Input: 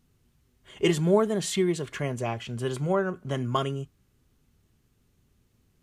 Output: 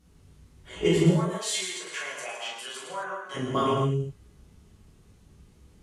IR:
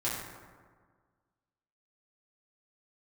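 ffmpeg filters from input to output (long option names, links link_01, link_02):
-filter_complex "[0:a]acompressor=threshold=-35dB:ratio=2,asplit=3[link_01][link_02][link_03];[link_01]afade=type=out:start_time=1.1:duration=0.02[link_04];[link_02]highpass=1200,afade=type=in:start_time=1.1:duration=0.02,afade=type=out:start_time=3.34:duration=0.02[link_05];[link_03]afade=type=in:start_time=3.34:duration=0.02[link_06];[link_04][link_05][link_06]amix=inputs=3:normalize=0[link_07];[1:a]atrim=start_sample=2205,atrim=end_sample=6615,asetrate=23814,aresample=44100[link_08];[link_07][link_08]afir=irnorm=-1:irlink=0"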